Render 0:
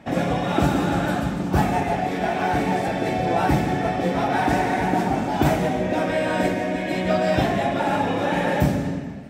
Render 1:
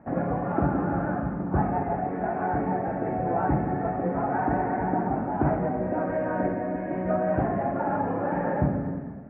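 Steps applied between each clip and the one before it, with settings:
inverse Chebyshev low-pass filter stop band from 3,900 Hz, stop band 50 dB
level −4.5 dB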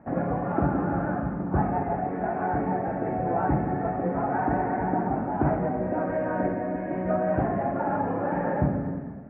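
no processing that can be heard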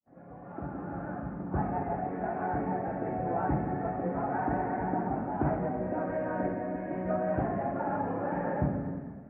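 fade in at the beginning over 1.87 s
level −5 dB

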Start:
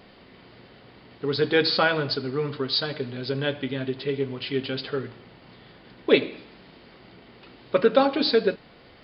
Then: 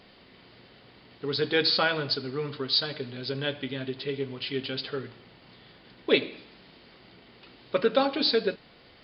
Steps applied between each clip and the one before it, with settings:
parametric band 4,500 Hz +5.5 dB 2 octaves
level −5 dB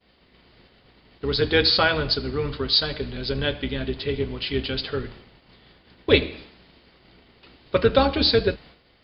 sub-octave generator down 2 octaves, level −2 dB
downward expander −46 dBFS
level +5 dB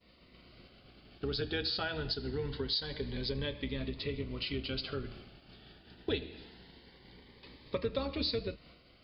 downward compressor 3 to 1, threshold −33 dBFS, peak gain reduction 16.5 dB
phaser whose notches keep moving one way rising 0.24 Hz
level −1.5 dB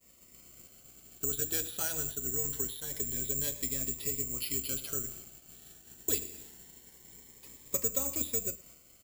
single-tap delay 112 ms −23 dB
bad sample-rate conversion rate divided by 6×, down filtered, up zero stuff
level −5 dB

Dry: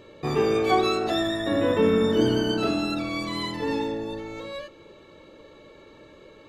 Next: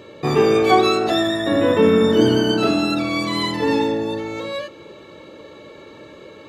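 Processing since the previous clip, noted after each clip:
high-pass filter 86 Hz
in parallel at +1.5 dB: speech leveller within 3 dB 2 s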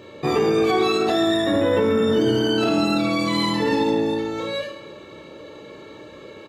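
reverse bouncing-ball delay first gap 30 ms, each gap 1.4×, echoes 5
brickwall limiter −9 dBFS, peak gain reduction 7.5 dB
level −2 dB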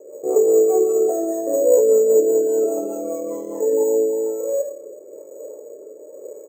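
flat-topped band-pass 500 Hz, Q 2.3
bad sample-rate conversion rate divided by 6×, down none, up hold
rotating-speaker cabinet horn 5 Hz, later 1 Hz, at 0:03.34
level +8.5 dB

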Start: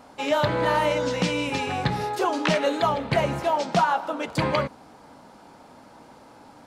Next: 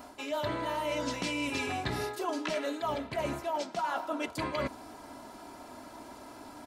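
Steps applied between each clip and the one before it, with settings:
comb filter 3 ms, depth 60%
reversed playback
downward compressor 12 to 1, threshold −30 dBFS, peak gain reduction 17 dB
reversed playback
high-shelf EQ 10,000 Hz +11.5 dB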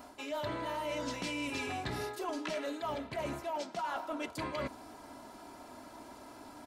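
soft clipping −25 dBFS, distortion −21 dB
level −3 dB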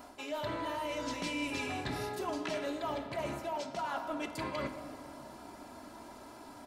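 convolution reverb RT60 2.7 s, pre-delay 3 ms, DRR 8.5 dB

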